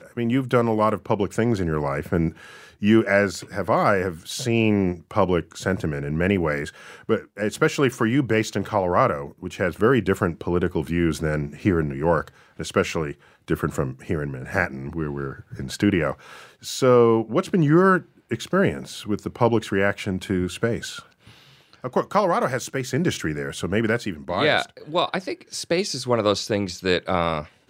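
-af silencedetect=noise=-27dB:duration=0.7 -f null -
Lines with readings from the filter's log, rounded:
silence_start: 20.99
silence_end: 21.84 | silence_duration: 0.86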